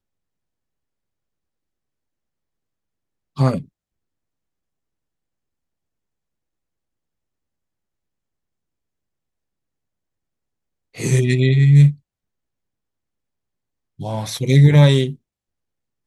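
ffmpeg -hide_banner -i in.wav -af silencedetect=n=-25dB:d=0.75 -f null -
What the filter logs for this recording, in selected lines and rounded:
silence_start: 0.00
silence_end: 3.39 | silence_duration: 3.39
silence_start: 3.59
silence_end: 10.99 | silence_duration: 7.40
silence_start: 11.91
silence_end: 14.00 | silence_duration: 2.09
silence_start: 15.12
silence_end: 16.07 | silence_duration: 0.95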